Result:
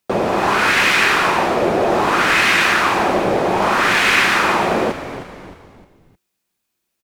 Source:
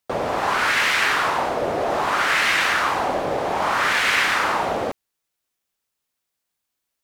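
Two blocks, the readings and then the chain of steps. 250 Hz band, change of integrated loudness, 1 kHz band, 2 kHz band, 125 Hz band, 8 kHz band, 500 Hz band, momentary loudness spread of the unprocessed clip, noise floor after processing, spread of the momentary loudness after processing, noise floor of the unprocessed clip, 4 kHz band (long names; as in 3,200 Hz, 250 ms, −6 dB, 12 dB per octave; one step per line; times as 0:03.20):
+10.5 dB, +5.0 dB, +4.5 dB, +5.0 dB, +9.0 dB, +4.5 dB, +6.5 dB, 6 LU, −75 dBFS, 7 LU, −80 dBFS, +4.5 dB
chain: hollow resonant body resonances 200/350/2,500 Hz, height 9 dB, ringing for 45 ms
echo with shifted repeats 309 ms, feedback 43%, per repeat −91 Hz, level −12 dB
level +4 dB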